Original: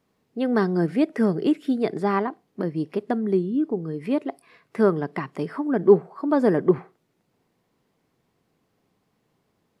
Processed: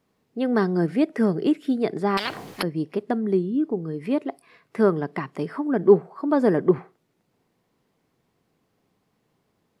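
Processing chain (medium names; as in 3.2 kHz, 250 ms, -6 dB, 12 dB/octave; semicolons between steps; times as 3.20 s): 2.17–2.63 s: spectrum-flattening compressor 10:1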